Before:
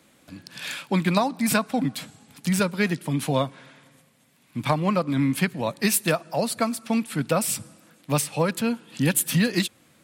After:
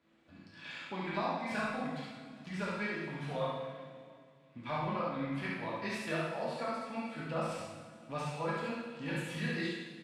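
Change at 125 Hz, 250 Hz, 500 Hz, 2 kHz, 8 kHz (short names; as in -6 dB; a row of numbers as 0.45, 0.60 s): -14.5, -15.0, -11.0, -9.5, -27.0 dB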